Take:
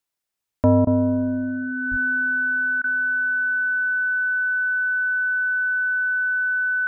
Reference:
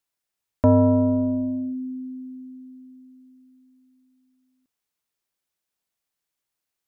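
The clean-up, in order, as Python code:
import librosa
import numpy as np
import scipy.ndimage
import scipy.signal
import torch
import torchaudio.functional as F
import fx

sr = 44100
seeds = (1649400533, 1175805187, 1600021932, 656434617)

y = fx.notch(x, sr, hz=1500.0, q=30.0)
y = fx.fix_deplosive(y, sr, at_s=(1.9,))
y = fx.fix_interpolate(y, sr, at_s=(0.85, 2.82), length_ms=19.0)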